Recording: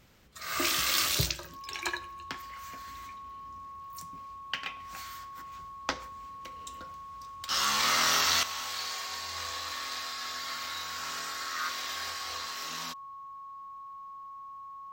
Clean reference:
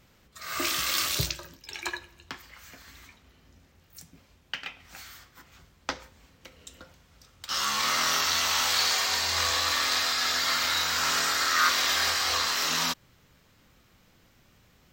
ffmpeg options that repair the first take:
-af "bandreject=f=1.1k:w=30,asetnsamples=n=441:p=0,asendcmd='8.43 volume volume 11.5dB',volume=0dB"

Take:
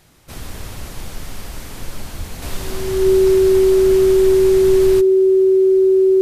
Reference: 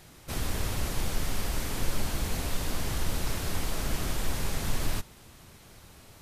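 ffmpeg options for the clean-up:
-filter_complex "[0:a]bandreject=f=380:w=30,asplit=3[a][b][c];[a]afade=t=out:st=2.17:d=0.02[d];[b]highpass=f=140:w=0.5412,highpass=f=140:w=1.3066,afade=t=in:st=2.17:d=0.02,afade=t=out:st=2.29:d=0.02[e];[c]afade=t=in:st=2.29:d=0.02[f];[d][e][f]amix=inputs=3:normalize=0,asplit=3[g][h][i];[g]afade=t=out:st=3.4:d=0.02[j];[h]highpass=f=140:w=0.5412,highpass=f=140:w=1.3066,afade=t=in:st=3.4:d=0.02,afade=t=out:st=3.52:d=0.02[k];[i]afade=t=in:st=3.52:d=0.02[l];[j][k][l]amix=inputs=3:normalize=0,asetnsamples=n=441:p=0,asendcmd='2.42 volume volume -5dB',volume=0dB"

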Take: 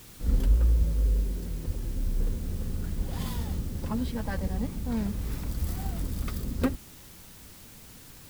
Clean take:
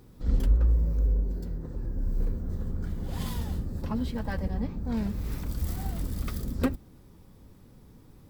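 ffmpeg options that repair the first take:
-filter_complex "[0:a]asplit=3[a][b][c];[a]afade=t=out:st=0.78:d=0.02[d];[b]highpass=f=140:w=0.5412,highpass=f=140:w=1.3066,afade=t=in:st=0.78:d=0.02,afade=t=out:st=0.9:d=0.02[e];[c]afade=t=in:st=0.9:d=0.02[f];[d][e][f]amix=inputs=3:normalize=0,asplit=3[g][h][i];[g]afade=t=out:st=1.66:d=0.02[j];[h]highpass=f=140:w=0.5412,highpass=f=140:w=1.3066,afade=t=in:st=1.66:d=0.02,afade=t=out:st=1.78:d=0.02[k];[i]afade=t=in:st=1.78:d=0.02[l];[j][k][l]amix=inputs=3:normalize=0,asplit=3[m][n][o];[m]afade=t=out:st=2.97:d=0.02[p];[n]highpass=f=140:w=0.5412,highpass=f=140:w=1.3066,afade=t=in:st=2.97:d=0.02,afade=t=out:st=3.09:d=0.02[q];[o]afade=t=in:st=3.09:d=0.02[r];[p][q][r]amix=inputs=3:normalize=0,afwtdn=0.0028"

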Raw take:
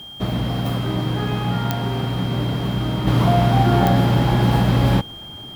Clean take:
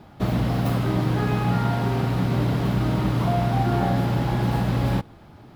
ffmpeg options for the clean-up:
-af "adeclick=t=4,bandreject=f=3.2k:w=30,agate=range=-21dB:threshold=-28dB,asetnsamples=n=441:p=0,asendcmd='3.07 volume volume -6dB',volume=0dB"

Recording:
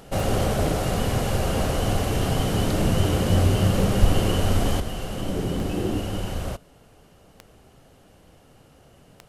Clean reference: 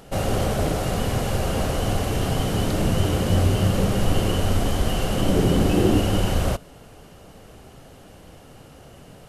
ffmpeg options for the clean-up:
-filter_complex "[0:a]adeclick=t=4,asplit=3[a][b][c];[a]afade=t=out:st=4:d=0.02[d];[b]highpass=f=140:w=0.5412,highpass=f=140:w=1.3066,afade=t=in:st=4:d=0.02,afade=t=out:st=4.12:d=0.02[e];[c]afade=t=in:st=4.12:d=0.02[f];[d][e][f]amix=inputs=3:normalize=0,asetnsamples=n=441:p=0,asendcmd='4.8 volume volume 7.5dB',volume=0dB"

